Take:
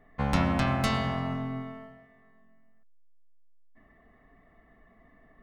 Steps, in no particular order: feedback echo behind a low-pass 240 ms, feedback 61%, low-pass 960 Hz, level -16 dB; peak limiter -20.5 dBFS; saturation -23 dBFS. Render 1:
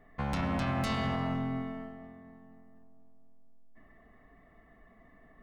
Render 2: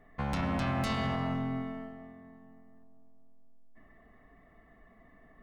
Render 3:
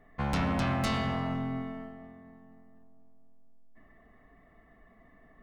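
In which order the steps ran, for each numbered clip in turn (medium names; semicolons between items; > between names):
feedback echo behind a low-pass > peak limiter > saturation; peak limiter > feedback echo behind a low-pass > saturation; feedback echo behind a low-pass > saturation > peak limiter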